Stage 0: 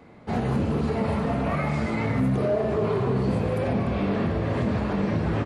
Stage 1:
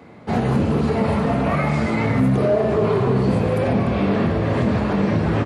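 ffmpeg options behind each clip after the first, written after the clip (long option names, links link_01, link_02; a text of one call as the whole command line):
ffmpeg -i in.wav -af "highpass=69,volume=6dB" out.wav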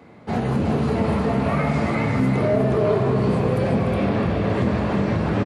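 ffmpeg -i in.wav -af "aecho=1:1:364:0.631,volume=-3dB" out.wav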